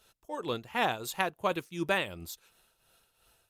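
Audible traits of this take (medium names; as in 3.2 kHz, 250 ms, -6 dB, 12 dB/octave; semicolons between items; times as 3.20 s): tremolo triangle 2.8 Hz, depth 70%; Opus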